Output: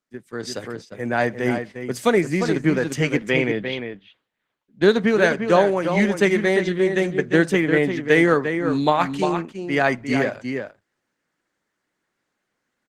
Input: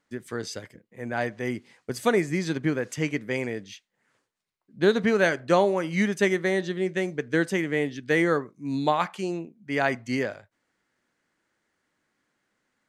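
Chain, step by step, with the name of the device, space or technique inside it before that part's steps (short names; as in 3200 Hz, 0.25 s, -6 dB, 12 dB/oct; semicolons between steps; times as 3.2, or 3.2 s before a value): 3.19–4.82 resonant high shelf 4600 Hz -11 dB, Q 3; outdoor echo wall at 60 m, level -7 dB; 7.49–7.97 dynamic EQ 6700 Hz, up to -5 dB, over -51 dBFS, Q 1.2; video call (HPF 110 Hz 24 dB/oct; AGC gain up to 9.5 dB; gate -34 dBFS, range -9 dB; gain -1 dB; Opus 16 kbps 48000 Hz)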